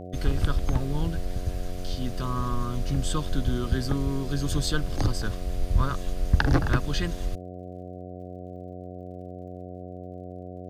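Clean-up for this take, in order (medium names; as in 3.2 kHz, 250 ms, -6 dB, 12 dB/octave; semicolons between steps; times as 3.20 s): de-click; de-hum 90.7 Hz, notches 8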